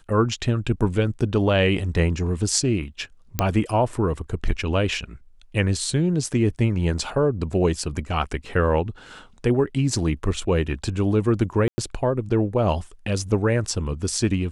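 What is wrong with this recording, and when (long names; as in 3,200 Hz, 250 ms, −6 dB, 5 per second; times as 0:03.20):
0:03.39: click −5 dBFS
0:11.68–0:11.78: drop-out 100 ms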